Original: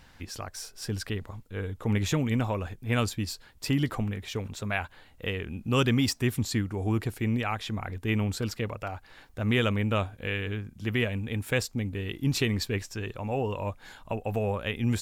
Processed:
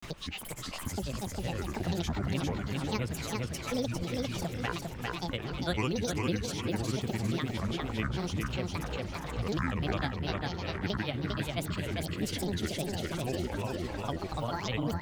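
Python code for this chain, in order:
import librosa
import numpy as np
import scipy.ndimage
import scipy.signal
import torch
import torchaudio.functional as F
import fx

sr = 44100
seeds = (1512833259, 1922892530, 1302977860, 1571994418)

y = fx.echo_split(x, sr, split_hz=360.0, low_ms=216, high_ms=359, feedback_pct=52, wet_db=-10.5)
y = fx.granulator(y, sr, seeds[0], grain_ms=100.0, per_s=20.0, spray_ms=100.0, spread_st=12)
y = fx.echo_feedback(y, sr, ms=401, feedback_pct=26, wet_db=-4.5)
y = fx.band_squash(y, sr, depth_pct=70)
y = y * librosa.db_to_amplitude(-5.0)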